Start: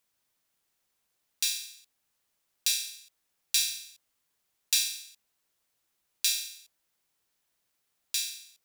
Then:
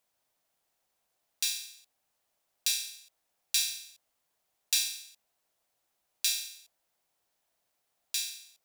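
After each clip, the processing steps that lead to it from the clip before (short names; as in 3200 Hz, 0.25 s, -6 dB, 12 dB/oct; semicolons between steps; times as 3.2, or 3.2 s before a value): bell 690 Hz +9.5 dB 0.87 oct; gain -2 dB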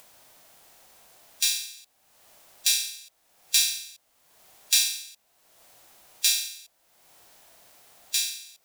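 harmonic-percussive split harmonic +5 dB; in parallel at +1 dB: upward compressor, threshold -33 dBFS; on the sum: gain -4 dB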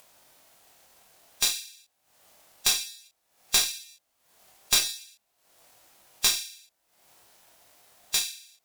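one-sided clip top -22 dBFS; chorus 0.51 Hz, delay 20 ms, depth 6.5 ms; transient shaper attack +7 dB, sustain -4 dB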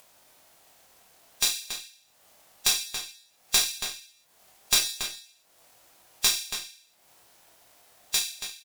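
outdoor echo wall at 48 m, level -7 dB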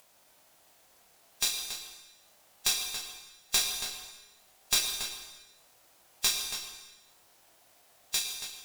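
plate-style reverb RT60 1.2 s, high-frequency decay 0.85×, pre-delay 90 ms, DRR 7 dB; gain -4.5 dB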